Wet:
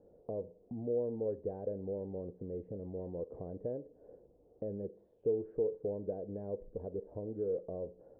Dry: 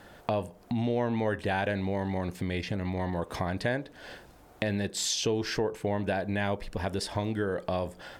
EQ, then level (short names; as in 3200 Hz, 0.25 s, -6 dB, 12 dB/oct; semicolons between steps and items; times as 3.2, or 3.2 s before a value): ladder low-pass 520 Hz, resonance 70%; -2.5 dB